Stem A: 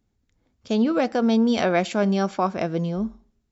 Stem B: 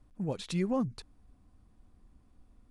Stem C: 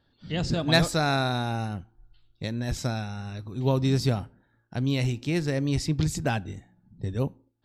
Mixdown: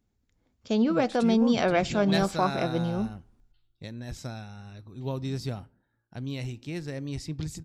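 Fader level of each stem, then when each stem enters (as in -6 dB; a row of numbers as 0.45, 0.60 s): -3.0, -3.0, -8.5 dB; 0.00, 0.70, 1.40 s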